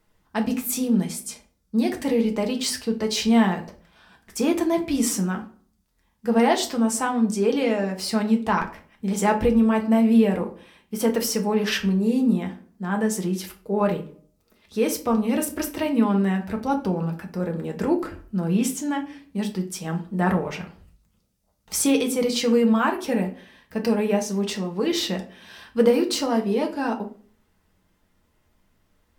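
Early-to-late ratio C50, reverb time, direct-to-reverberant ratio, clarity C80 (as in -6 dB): 13.0 dB, 0.45 s, 2.0 dB, 17.5 dB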